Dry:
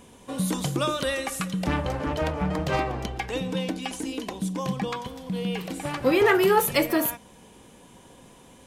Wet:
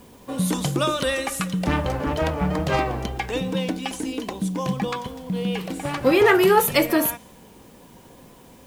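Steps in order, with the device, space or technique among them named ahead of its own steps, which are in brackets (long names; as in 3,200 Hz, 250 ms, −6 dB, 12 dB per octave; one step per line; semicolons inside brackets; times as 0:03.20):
plain cassette with noise reduction switched in (one half of a high-frequency compander decoder only; tape wow and flutter 26 cents; white noise bed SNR 34 dB)
level +3.5 dB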